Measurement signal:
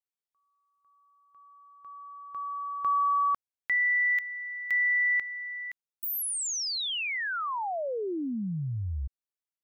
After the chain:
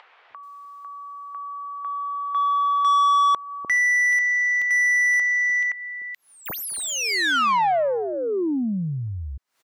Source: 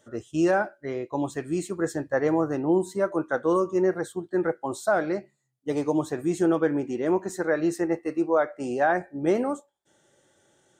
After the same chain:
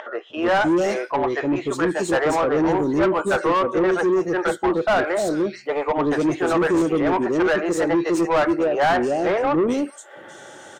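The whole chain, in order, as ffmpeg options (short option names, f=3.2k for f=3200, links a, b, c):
-filter_complex "[0:a]acrossover=split=460|2900[a][b][c];[a]adelay=300[d];[c]adelay=430[e];[d][b][e]amix=inputs=3:normalize=0,acompressor=mode=upward:threshold=-45dB:ratio=2.5:attack=15:release=165:knee=2.83:detection=peak,asplit=2[f][g];[g]highpass=f=720:p=1,volume=25dB,asoftclip=type=tanh:threshold=-10.5dB[h];[f][h]amix=inputs=2:normalize=0,lowpass=f=2.1k:p=1,volume=-6dB"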